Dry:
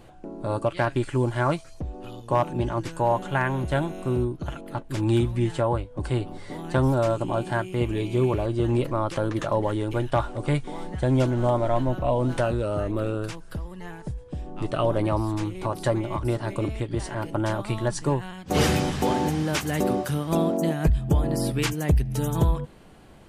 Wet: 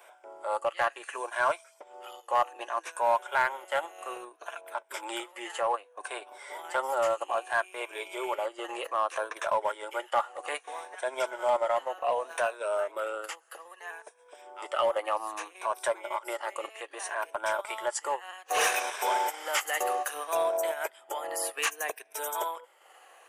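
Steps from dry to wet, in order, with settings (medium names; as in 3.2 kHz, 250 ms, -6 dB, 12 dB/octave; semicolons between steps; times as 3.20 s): drifting ripple filter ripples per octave 1.6, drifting -0.63 Hz, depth 8 dB; Bessel high-pass 870 Hz, order 8; peaking EQ 4.3 kHz -11.5 dB 0.63 oct; transient shaper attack -3 dB, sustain -7 dB; in parallel at -4 dB: hard clipper -26.5 dBFS, distortion -12 dB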